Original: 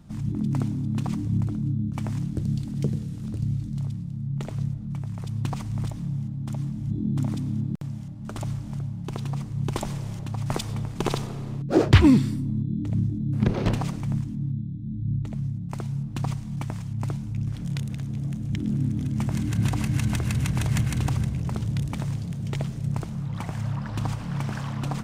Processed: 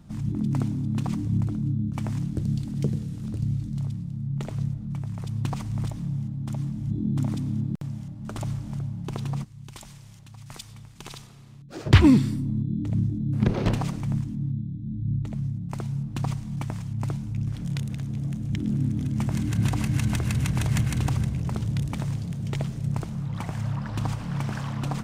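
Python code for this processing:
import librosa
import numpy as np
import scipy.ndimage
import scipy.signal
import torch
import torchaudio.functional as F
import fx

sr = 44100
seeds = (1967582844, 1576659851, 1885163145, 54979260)

y = fx.tone_stack(x, sr, knobs='5-5-5', at=(9.43, 11.85), fade=0.02)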